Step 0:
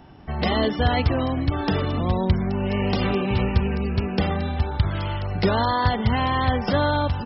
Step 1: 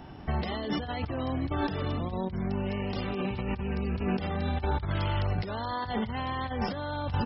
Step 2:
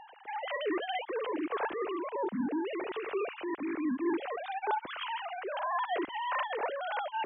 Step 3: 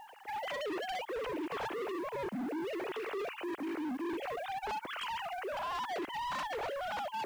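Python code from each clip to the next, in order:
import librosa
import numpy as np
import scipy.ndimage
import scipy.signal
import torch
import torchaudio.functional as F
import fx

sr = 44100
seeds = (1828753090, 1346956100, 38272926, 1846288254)

y1 = fx.over_compress(x, sr, threshold_db=-28.0, ratio=-1.0)
y1 = y1 * 10.0 ** (-3.5 / 20.0)
y2 = fx.sine_speech(y1, sr)
y2 = y2 * 10.0 ** (-3.5 / 20.0)
y3 = fx.quant_companded(y2, sr, bits=6)
y3 = np.clip(y3, -10.0 ** (-35.0 / 20.0), 10.0 ** (-35.0 / 20.0))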